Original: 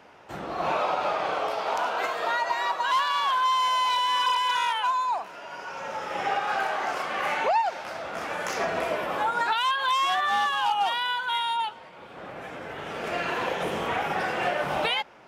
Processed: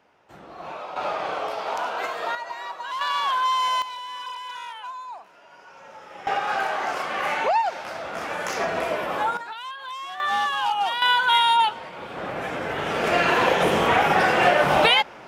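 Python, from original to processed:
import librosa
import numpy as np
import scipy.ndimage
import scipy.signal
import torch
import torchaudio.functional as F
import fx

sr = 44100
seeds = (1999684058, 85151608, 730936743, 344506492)

y = fx.gain(x, sr, db=fx.steps((0.0, -9.5), (0.96, -0.5), (2.35, -7.0), (3.01, 1.0), (3.82, -10.5), (6.27, 2.0), (9.37, -10.5), (10.2, 1.0), (11.02, 9.0)))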